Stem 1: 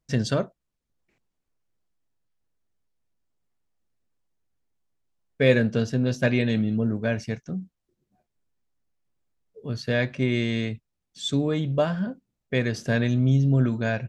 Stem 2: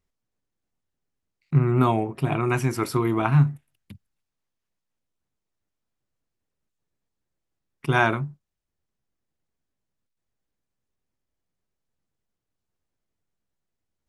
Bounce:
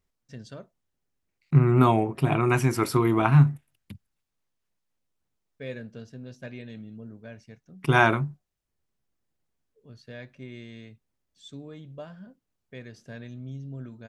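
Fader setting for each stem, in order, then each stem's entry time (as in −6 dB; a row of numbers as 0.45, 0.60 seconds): −18.0, +1.0 decibels; 0.20, 0.00 seconds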